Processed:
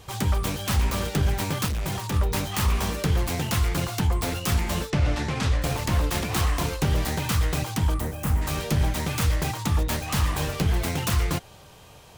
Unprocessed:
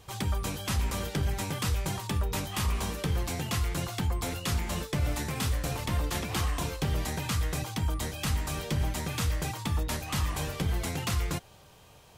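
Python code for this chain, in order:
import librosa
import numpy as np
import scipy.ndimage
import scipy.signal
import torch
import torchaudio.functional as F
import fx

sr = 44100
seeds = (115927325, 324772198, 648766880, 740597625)

y = fx.self_delay(x, sr, depth_ms=0.2)
y = fx.overload_stage(y, sr, gain_db=31.0, at=(1.66, 2.14))
y = fx.lowpass(y, sr, hz=5500.0, slope=12, at=(4.9, 5.62))
y = fx.peak_eq(y, sr, hz=4100.0, db=-14.0, octaves=2.0, at=(7.99, 8.41), fade=0.02)
y = y * librosa.db_to_amplitude(6.5)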